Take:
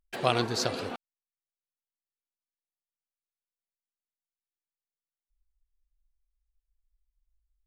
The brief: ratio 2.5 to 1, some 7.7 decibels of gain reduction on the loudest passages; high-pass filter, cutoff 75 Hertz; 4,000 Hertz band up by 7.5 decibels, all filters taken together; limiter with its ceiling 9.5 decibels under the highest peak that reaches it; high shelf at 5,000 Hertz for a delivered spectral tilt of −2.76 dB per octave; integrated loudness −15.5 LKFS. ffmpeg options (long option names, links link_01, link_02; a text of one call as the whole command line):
ffmpeg -i in.wav -af "highpass=75,equalizer=frequency=4000:width_type=o:gain=5.5,highshelf=frequency=5000:gain=7.5,acompressor=threshold=-30dB:ratio=2.5,volume=19.5dB,alimiter=limit=-2.5dB:level=0:latency=1" out.wav